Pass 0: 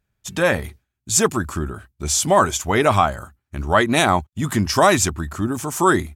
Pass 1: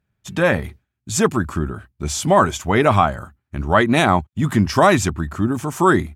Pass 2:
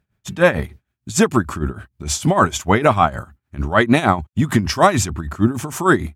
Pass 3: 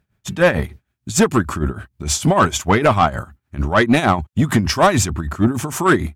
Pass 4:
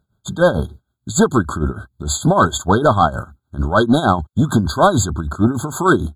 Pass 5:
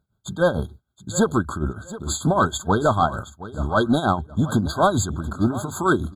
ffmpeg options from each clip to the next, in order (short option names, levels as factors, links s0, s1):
-af "highpass=f=170:p=1,bass=f=250:g=8,treble=f=4000:g=-8,volume=1.12"
-af "alimiter=limit=0.447:level=0:latency=1:release=54,tremolo=f=6.6:d=0.8,volume=1.88"
-af "acontrast=74,volume=0.631"
-af "afftfilt=real='re*eq(mod(floor(b*sr/1024/1600),2),0)':imag='im*eq(mod(floor(b*sr/1024/1600),2),0)':win_size=1024:overlap=0.75,volume=1.12"
-af "aecho=1:1:720|1440:0.158|0.038,volume=0.531"